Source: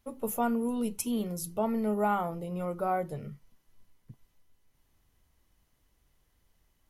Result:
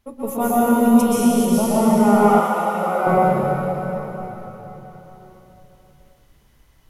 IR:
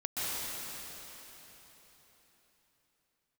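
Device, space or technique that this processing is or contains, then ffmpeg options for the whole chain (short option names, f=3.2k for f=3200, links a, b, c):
swimming-pool hall: -filter_complex "[1:a]atrim=start_sample=2205[a];[0:a][a]afir=irnorm=-1:irlink=0,highshelf=f=5.6k:g=-4.5,asettb=1/sr,asplit=3[b][c][d];[b]atrim=end=2.404[e];[c]atrim=start=2.4:end=3.07,asetpts=PTS-STARTPTS,afade=t=in:d=0.004:c=qsin,afade=t=out:st=0.666:d=0.004:c=qsin,highpass=f=630:p=1[f];[d]atrim=start=3.066[g];[e][f]acrossfade=d=0.004:c1=hsin:c2=qsin[h];[h][g]acrossfade=d=0.004:c1=qsin:c2=hsin,volume=8dB"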